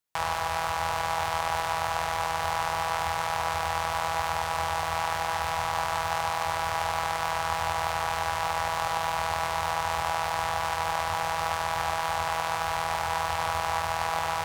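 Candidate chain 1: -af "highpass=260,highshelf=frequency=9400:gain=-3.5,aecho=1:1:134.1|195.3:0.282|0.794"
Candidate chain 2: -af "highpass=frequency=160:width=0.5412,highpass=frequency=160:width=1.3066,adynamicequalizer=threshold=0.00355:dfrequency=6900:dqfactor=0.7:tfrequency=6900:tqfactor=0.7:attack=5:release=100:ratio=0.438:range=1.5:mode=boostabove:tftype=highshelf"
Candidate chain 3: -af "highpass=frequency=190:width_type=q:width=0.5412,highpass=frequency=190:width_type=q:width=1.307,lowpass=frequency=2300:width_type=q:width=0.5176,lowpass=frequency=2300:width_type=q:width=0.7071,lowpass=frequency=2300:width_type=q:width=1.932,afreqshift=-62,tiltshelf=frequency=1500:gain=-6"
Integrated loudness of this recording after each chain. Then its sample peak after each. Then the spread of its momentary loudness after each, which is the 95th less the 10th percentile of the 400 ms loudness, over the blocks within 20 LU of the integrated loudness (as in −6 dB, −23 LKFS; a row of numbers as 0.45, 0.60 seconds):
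−27.5, −28.5, −31.5 LKFS; −12.5, −11.5, −17.0 dBFS; 1, 0, 0 LU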